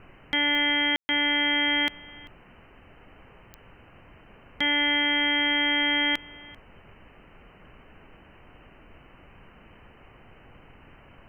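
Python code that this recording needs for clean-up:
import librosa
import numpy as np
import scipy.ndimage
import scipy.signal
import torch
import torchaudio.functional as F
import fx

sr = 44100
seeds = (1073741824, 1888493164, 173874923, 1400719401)

y = fx.fix_declick_ar(x, sr, threshold=10.0)
y = fx.fix_ambience(y, sr, seeds[0], print_start_s=2.37, print_end_s=2.87, start_s=0.96, end_s=1.09)
y = fx.noise_reduce(y, sr, print_start_s=2.37, print_end_s=2.87, reduce_db=20.0)
y = fx.fix_echo_inverse(y, sr, delay_ms=391, level_db=-23.0)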